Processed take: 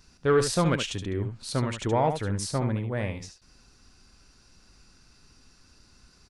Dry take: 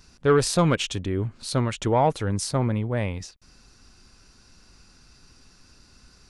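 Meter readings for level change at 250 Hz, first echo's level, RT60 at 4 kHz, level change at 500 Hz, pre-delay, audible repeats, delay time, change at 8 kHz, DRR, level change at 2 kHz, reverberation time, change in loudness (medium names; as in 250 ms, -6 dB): -3.5 dB, -8.0 dB, no reverb, -3.0 dB, no reverb, 1, 72 ms, -3.5 dB, no reverb, -2.0 dB, no reverb, -3.0 dB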